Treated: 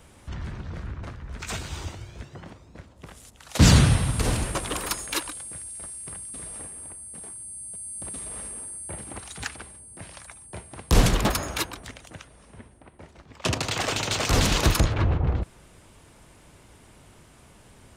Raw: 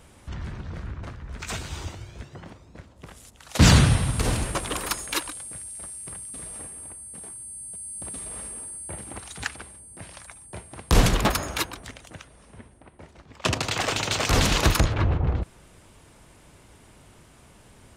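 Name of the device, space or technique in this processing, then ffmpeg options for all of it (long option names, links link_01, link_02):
one-band saturation: -filter_complex "[0:a]acrossover=split=590|3700[link_01][link_02][link_03];[link_02]asoftclip=type=tanh:threshold=-22.5dB[link_04];[link_01][link_04][link_03]amix=inputs=3:normalize=0"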